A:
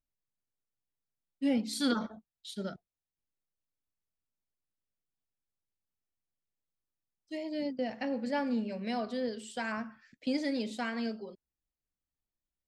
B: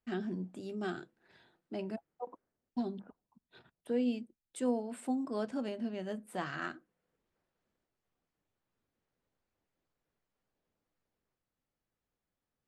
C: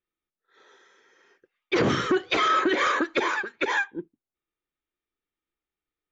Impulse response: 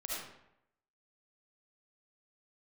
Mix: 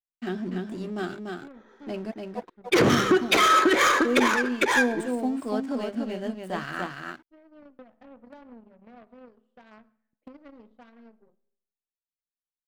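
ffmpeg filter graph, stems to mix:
-filter_complex "[0:a]lowpass=1.1k,acompressor=threshold=-31dB:ratio=8,aeval=exprs='0.0501*(cos(1*acos(clip(val(0)/0.0501,-1,1)))-cos(1*PI/2))+0.0126*(cos(3*acos(clip(val(0)/0.0501,-1,1)))-cos(3*PI/2))+0.00316*(cos(6*acos(clip(val(0)/0.0501,-1,1)))-cos(6*PI/2))+0.00316*(cos(8*acos(clip(val(0)/0.0501,-1,1)))-cos(8*PI/2))':c=same,volume=-9dB,asplit=2[a][b];[b]volume=-22dB[c];[1:a]acontrast=56,aeval=exprs='sgn(val(0))*max(abs(val(0))-0.00398,0)':c=same,adelay=150,volume=0.5dB,asplit=2[d][e];[e]volume=-4dB[f];[2:a]equalizer=f=6.8k:w=1.7:g=15,adynamicsmooth=sensitivity=3.5:basefreq=1.5k,adelay=1000,volume=2dB,asplit=3[g][h][i];[h]volume=-15dB[j];[i]volume=-24dB[k];[3:a]atrim=start_sample=2205[l];[c][j]amix=inputs=2:normalize=0[m];[m][l]afir=irnorm=-1:irlink=0[n];[f][k]amix=inputs=2:normalize=0,aecho=0:1:291:1[o];[a][d][g][n][o]amix=inputs=5:normalize=0"

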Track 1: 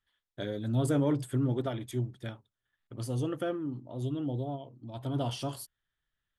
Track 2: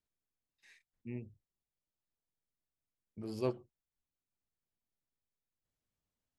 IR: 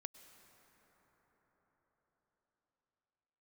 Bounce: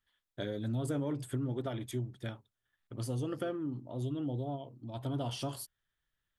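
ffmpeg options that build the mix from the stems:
-filter_complex "[0:a]volume=0dB[a];[1:a]volume=-14dB[b];[a][b]amix=inputs=2:normalize=0,acompressor=threshold=-32dB:ratio=4"

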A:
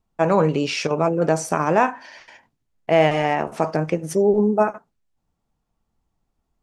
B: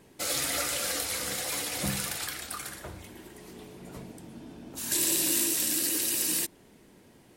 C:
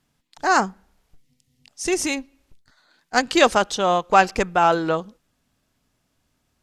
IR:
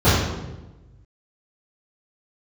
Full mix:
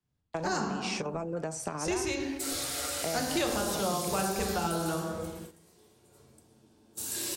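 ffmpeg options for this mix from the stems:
-filter_complex "[0:a]adelay=150,volume=-5dB[a];[1:a]lowshelf=f=460:g=-7,asoftclip=type=tanh:threshold=-14.5dB,bass=f=250:g=-10,treble=f=4k:g=13,adelay=2200,volume=-14.5dB,asplit=2[b][c];[c]volume=-12dB[d];[2:a]volume=-7.5dB,asplit=2[e][f];[f]volume=-23dB[g];[a][b]amix=inputs=2:normalize=0,equalizer=f=8.2k:t=o:w=0.37:g=7.5,acompressor=threshold=-29dB:ratio=5,volume=0dB[h];[3:a]atrim=start_sample=2205[i];[d][g]amix=inputs=2:normalize=0[j];[j][i]afir=irnorm=-1:irlink=0[k];[e][h][k]amix=inputs=3:normalize=0,agate=range=-12dB:threshold=-43dB:ratio=16:detection=peak,acrossover=split=190|520|3500[l][m][n][o];[l]acompressor=threshold=-39dB:ratio=4[p];[m]acompressor=threshold=-37dB:ratio=4[q];[n]acompressor=threshold=-35dB:ratio=4[r];[o]acompressor=threshold=-35dB:ratio=4[s];[p][q][r][s]amix=inputs=4:normalize=0"

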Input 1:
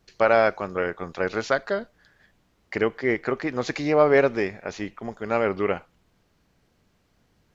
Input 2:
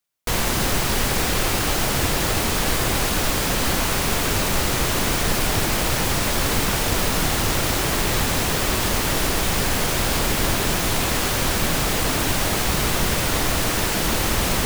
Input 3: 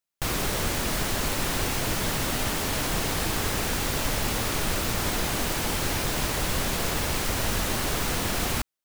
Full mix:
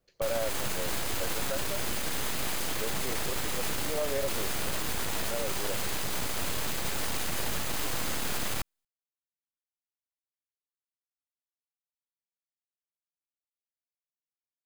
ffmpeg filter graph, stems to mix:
-filter_complex "[0:a]equalizer=f=540:w=3.6:g=12.5,volume=-14dB[a];[2:a]aeval=exprs='abs(val(0))':c=same,volume=2.5dB[b];[a][b]amix=inputs=2:normalize=0,bandreject=f=5.6k:w=18,alimiter=limit=-20dB:level=0:latency=1"

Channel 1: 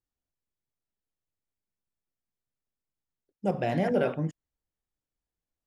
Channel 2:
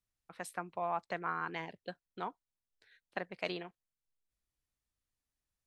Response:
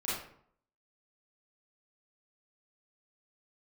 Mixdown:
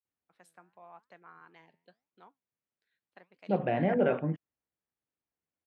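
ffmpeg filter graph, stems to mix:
-filter_complex "[0:a]lowpass=f=2.8k:w=0.5412,lowpass=f=2.8k:w=1.3066,adelay=50,volume=-0.5dB[a];[1:a]flanger=delay=3.5:depth=8.8:regen=88:speed=0.87:shape=sinusoidal,volume=-12.5dB[b];[a][b]amix=inputs=2:normalize=0,highpass=120"

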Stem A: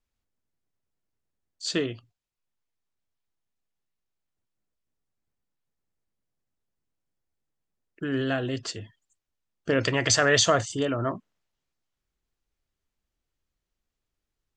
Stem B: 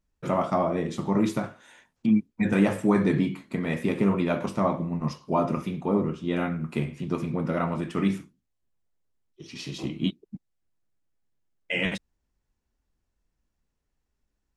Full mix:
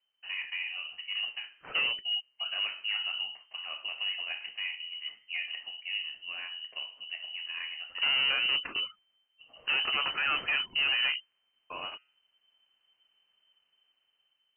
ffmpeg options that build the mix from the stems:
-filter_complex "[0:a]dynaudnorm=f=520:g=5:m=10dB,alimiter=limit=-14dB:level=0:latency=1:release=484,volume=1dB[a];[1:a]bandreject=f=130.4:t=h:w=4,bandreject=f=260.8:t=h:w=4,bandreject=f=391.2:t=h:w=4,bandreject=f=521.6:t=h:w=4,bandreject=f=652:t=h:w=4,bandreject=f=782.4:t=h:w=4,bandreject=f=912.8:t=h:w=4,bandreject=f=1.0432k:t=h:w=4,bandreject=f=1.1736k:t=h:w=4,bandreject=f=1.304k:t=h:w=4,bandreject=f=1.4344k:t=h:w=4,bandreject=f=1.5648k:t=h:w=4,bandreject=f=1.6952k:t=h:w=4,bandreject=f=1.8256k:t=h:w=4,volume=-11.5dB[b];[a][b]amix=inputs=2:normalize=0,asoftclip=type=hard:threshold=-25.5dB,lowpass=f=2.6k:t=q:w=0.5098,lowpass=f=2.6k:t=q:w=0.6013,lowpass=f=2.6k:t=q:w=0.9,lowpass=f=2.6k:t=q:w=2.563,afreqshift=-3100"

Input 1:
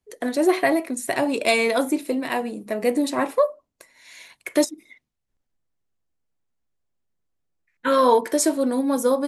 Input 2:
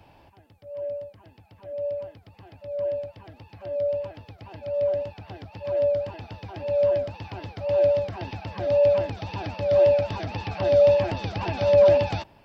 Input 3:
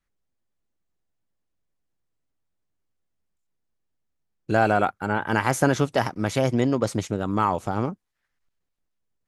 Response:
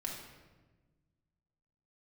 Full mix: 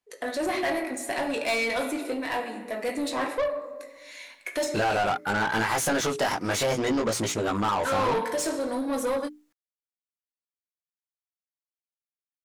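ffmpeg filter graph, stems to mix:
-filter_complex "[0:a]volume=-12.5dB,asplit=2[a][b];[b]volume=-5.5dB[c];[2:a]highshelf=f=7.5k:g=10,adelay=250,volume=3dB[d];[a][d]amix=inputs=2:normalize=0,flanger=delay=17.5:depth=3.3:speed=0.69,acompressor=threshold=-22dB:ratio=6,volume=0dB[e];[3:a]atrim=start_sample=2205[f];[c][f]afir=irnorm=-1:irlink=0[g];[e][g]amix=inputs=2:normalize=0,bandreject=f=60:t=h:w=6,bandreject=f=120:t=h:w=6,bandreject=f=180:t=h:w=6,bandreject=f=240:t=h:w=6,bandreject=f=300:t=h:w=6,bandreject=f=360:t=h:w=6,bandreject=f=420:t=h:w=6,asplit=2[h][i];[i]highpass=f=720:p=1,volume=19dB,asoftclip=type=tanh:threshold=-19dB[j];[h][j]amix=inputs=2:normalize=0,lowpass=f=5.7k:p=1,volume=-6dB"

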